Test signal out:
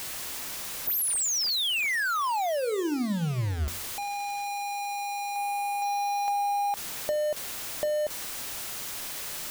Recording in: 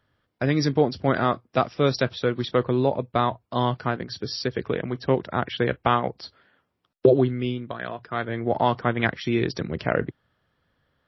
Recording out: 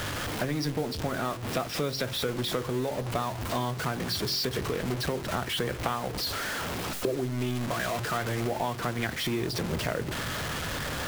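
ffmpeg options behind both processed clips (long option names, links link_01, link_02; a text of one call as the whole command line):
ffmpeg -i in.wav -af "aeval=exprs='val(0)+0.5*0.0708*sgn(val(0))':channel_layout=same,acompressor=threshold=-24dB:ratio=5,acrusher=bits=6:mix=0:aa=0.000001,bandreject=frequency=45.11:width_type=h:width=4,bandreject=frequency=90.22:width_type=h:width=4,bandreject=frequency=135.33:width_type=h:width=4,bandreject=frequency=180.44:width_type=h:width=4,bandreject=frequency=225.55:width_type=h:width=4,bandreject=frequency=270.66:width_type=h:width=4,bandreject=frequency=315.77:width_type=h:width=4,bandreject=frequency=360.88:width_type=h:width=4,bandreject=frequency=405.99:width_type=h:width=4,bandreject=frequency=451.1:width_type=h:width=4,bandreject=frequency=496.21:width_type=h:width=4,bandreject=frequency=541.32:width_type=h:width=4,volume=-2.5dB" out.wav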